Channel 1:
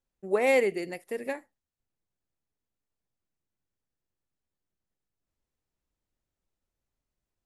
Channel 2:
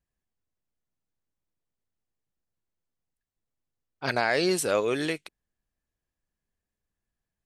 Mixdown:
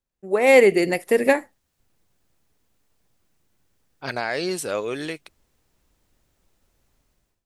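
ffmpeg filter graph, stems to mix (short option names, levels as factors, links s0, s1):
-filter_complex "[0:a]dynaudnorm=f=430:g=3:m=3.55,volume=0.944[s0];[1:a]volume=0.316[s1];[s0][s1]amix=inputs=2:normalize=0,dynaudnorm=f=100:g=7:m=2.66"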